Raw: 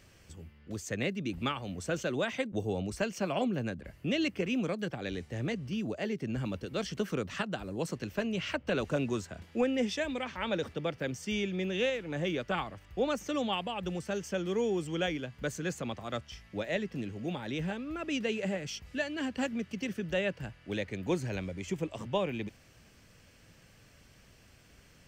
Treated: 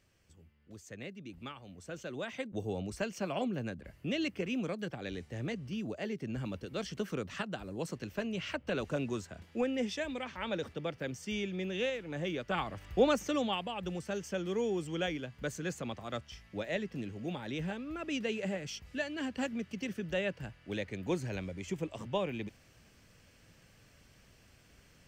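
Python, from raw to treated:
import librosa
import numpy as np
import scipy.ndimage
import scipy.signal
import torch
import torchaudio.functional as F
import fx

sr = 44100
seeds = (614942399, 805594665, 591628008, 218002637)

y = fx.gain(x, sr, db=fx.line((1.77, -12.0), (2.65, -3.5), (12.44, -3.5), (12.88, 6.0), (13.6, -2.5)))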